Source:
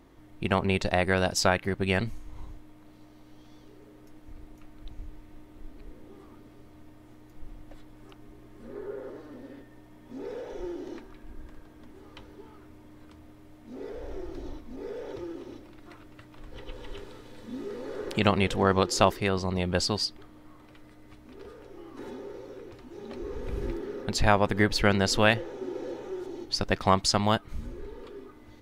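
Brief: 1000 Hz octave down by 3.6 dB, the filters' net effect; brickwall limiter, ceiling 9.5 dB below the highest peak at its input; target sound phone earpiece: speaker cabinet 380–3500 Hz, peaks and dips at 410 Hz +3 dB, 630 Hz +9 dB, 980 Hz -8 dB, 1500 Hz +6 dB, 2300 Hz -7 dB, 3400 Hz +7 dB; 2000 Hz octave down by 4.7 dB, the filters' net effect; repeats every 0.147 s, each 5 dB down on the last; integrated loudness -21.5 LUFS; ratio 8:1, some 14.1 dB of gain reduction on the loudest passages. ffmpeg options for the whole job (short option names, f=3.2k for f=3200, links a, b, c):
-af "equalizer=f=1k:t=o:g=-4.5,equalizer=f=2k:t=o:g=-7.5,acompressor=threshold=-33dB:ratio=8,alimiter=level_in=4dB:limit=-24dB:level=0:latency=1,volume=-4dB,highpass=380,equalizer=f=410:t=q:w=4:g=3,equalizer=f=630:t=q:w=4:g=9,equalizer=f=980:t=q:w=4:g=-8,equalizer=f=1.5k:t=q:w=4:g=6,equalizer=f=2.3k:t=q:w=4:g=-7,equalizer=f=3.4k:t=q:w=4:g=7,lowpass=f=3.5k:w=0.5412,lowpass=f=3.5k:w=1.3066,aecho=1:1:147|294|441|588|735|882|1029:0.562|0.315|0.176|0.0988|0.0553|0.031|0.0173,volume=20.5dB"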